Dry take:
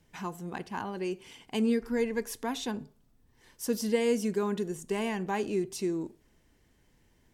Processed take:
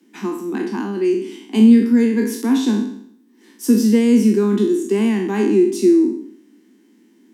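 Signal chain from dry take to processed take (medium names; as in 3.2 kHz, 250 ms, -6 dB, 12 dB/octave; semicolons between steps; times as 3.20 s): spectral sustain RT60 0.65 s; steep high-pass 200 Hz 96 dB/octave; resonant low shelf 420 Hz +9.5 dB, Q 3; trim +5 dB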